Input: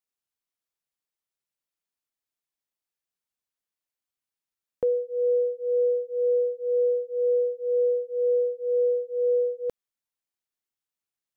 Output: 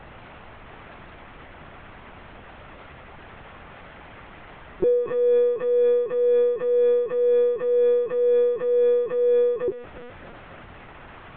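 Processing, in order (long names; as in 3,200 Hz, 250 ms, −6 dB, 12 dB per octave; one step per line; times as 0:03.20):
converter with a step at zero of −33.5 dBFS
in parallel at +1 dB: downward compressor 10 to 1, threshold −33 dBFS, peak gain reduction 13 dB
on the sum: high-frequency loss of the air 470 metres
formants moved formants −5 semitones
feedback echo with a high-pass in the loop 270 ms, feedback 64%, high-pass 240 Hz, level −16.5 dB
linear-prediction vocoder at 8 kHz pitch kept
level +3 dB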